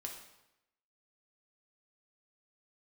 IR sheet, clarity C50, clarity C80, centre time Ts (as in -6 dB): 5.5 dB, 8.0 dB, 30 ms